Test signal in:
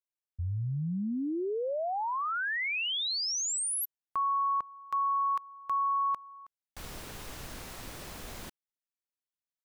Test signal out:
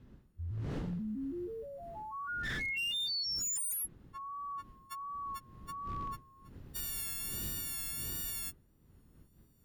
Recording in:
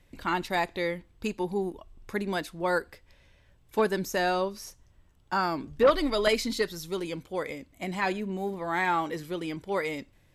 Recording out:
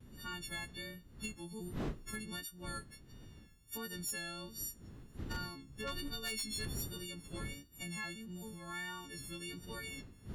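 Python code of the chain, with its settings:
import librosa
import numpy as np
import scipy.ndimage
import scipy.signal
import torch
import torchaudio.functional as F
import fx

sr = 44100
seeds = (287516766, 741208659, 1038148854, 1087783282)

y = fx.freq_snap(x, sr, grid_st=4)
y = fx.recorder_agc(y, sr, target_db=-15.0, rise_db_per_s=9.5, max_gain_db=30)
y = fx.dmg_wind(y, sr, seeds[0], corner_hz=450.0, level_db=-33.0)
y = fx.tone_stack(y, sr, knobs='6-0-2')
y = fx.wow_flutter(y, sr, seeds[1], rate_hz=1.4, depth_cents=47.0)
y = fx.notch(y, sr, hz=2300.0, q=12.0)
y = fx.dynamic_eq(y, sr, hz=5300.0, q=1.3, threshold_db=-53.0, ratio=4.0, max_db=-5)
y = 10.0 ** (-34.5 / 20.0) * (np.abs((y / 10.0 ** (-34.5 / 20.0) + 3.0) % 4.0 - 2.0) - 1.0)
y = y * 10.0 ** (2.5 / 20.0)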